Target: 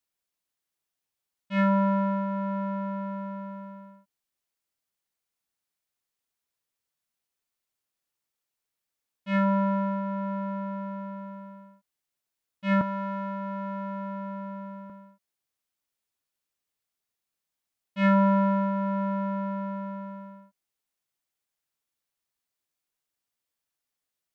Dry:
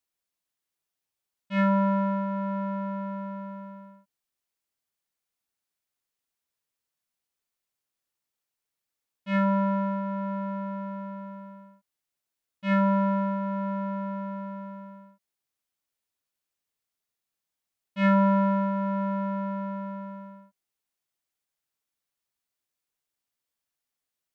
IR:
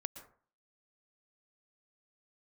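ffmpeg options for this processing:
-filter_complex "[0:a]asettb=1/sr,asplit=3[a][b][c];[a]atrim=end=12.814[d];[b]atrim=start=12.81:end=14.9,asetpts=PTS-STARTPTS,afade=t=in:d=0.004:c=qsin,afade=t=out:st=2.086:d=0.004:c=qsin,acrossover=split=520|1200[e][f][g];[e]acompressor=threshold=-36dB:ratio=4[h];[f]acompressor=threshold=-38dB:ratio=4[i];[g]acompressor=threshold=-37dB:ratio=4[j];[h][i][j]amix=inputs=3:normalize=0[k];[c]atrim=start=14.896[l];[d][k]acrossfade=d=0.004:c1=hsin:c2=qsin[m];[m][l]acrossfade=d=0.004:c1=qsin:c2=hsin"

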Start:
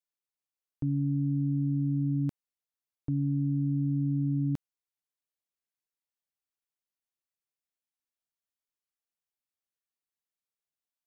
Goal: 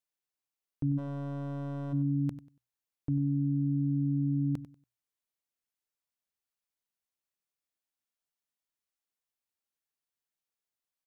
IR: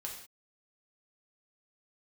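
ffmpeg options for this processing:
-filter_complex "[0:a]bandreject=f=60:t=h:w=6,bandreject=f=120:t=h:w=6,asplit=3[a][b][c];[a]afade=t=out:st=0.97:d=0.02[d];[b]asoftclip=type=hard:threshold=-33.5dB,afade=t=in:st=0.97:d=0.02,afade=t=out:st=1.92:d=0.02[e];[c]afade=t=in:st=1.92:d=0.02[f];[d][e][f]amix=inputs=3:normalize=0,aecho=1:1:95|190|285:0.2|0.0459|0.0106"

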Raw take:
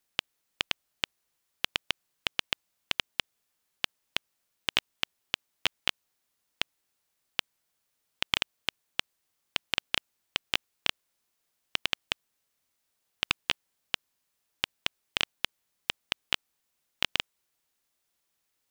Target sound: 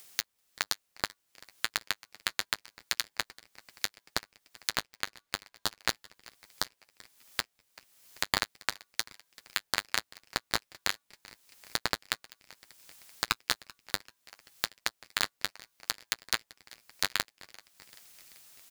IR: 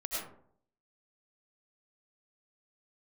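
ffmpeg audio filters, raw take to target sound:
-filter_complex "[0:a]asettb=1/sr,asplit=3[a][b][c];[a]atrim=end=4.724[d];[b]atrim=start=4.72:end=5.8,asetpts=PTS-STARTPTS,afade=t=in:d=0.004:c=qsin,afade=t=out:st=1.076:d=0.004:c=qsin,bass=f=250:g=-1,treble=f=4k:g=-12[e];[c]atrim=start=5.796[f];[d][e]acrossfade=d=0.004:c1=hsin:c2=qsin[g];[g][f]acrossfade=d=0.004:c1=qsin:c2=hsin,acrossover=split=2400[h][i];[i]acompressor=mode=upward:threshold=-34dB:ratio=2.5[j];[h][j]amix=inputs=2:normalize=0,flanger=delay=8.6:depth=1.4:regen=-33:speed=0.68:shape=sinusoidal,asplit=6[k][l][m][n][o][p];[l]adelay=387,afreqshift=150,volume=-22dB[q];[m]adelay=774,afreqshift=300,volume=-26.2dB[r];[n]adelay=1161,afreqshift=450,volume=-30.3dB[s];[o]adelay=1548,afreqshift=600,volume=-34.5dB[t];[p]adelay=1935,afreqshift=750,volume=-38.6dB[u];[k][q][r][s][t][u]amix=inputs=6:normalize=0,aeval=exprs='val(0)*sgn(sin(2*PI*1300*n/s))':c=same,volume=3dB"

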